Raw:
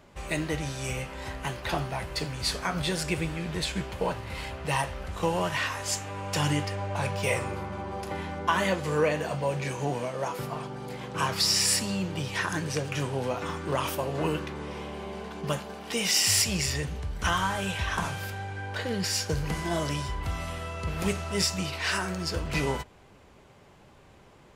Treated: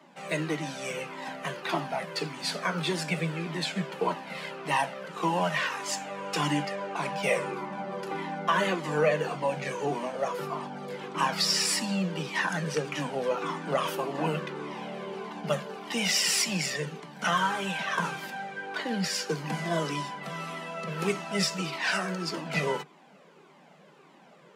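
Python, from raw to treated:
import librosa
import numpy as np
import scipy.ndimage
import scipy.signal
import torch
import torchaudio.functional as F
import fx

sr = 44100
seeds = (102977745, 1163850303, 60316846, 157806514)

y = scipy.signal.sosfilt(scipy.signal.butter(16, 150.0, 'highpass', fs=sr, output='sos'), x)
y = fx.high_shelf(y, sr, hz=5600.0, db=-8.5)
y = fx.comb_cascade(y, sr, direction='falling', hz=1.7)
y = F.gain(torch.from_numpy(y), 6.0).numpy()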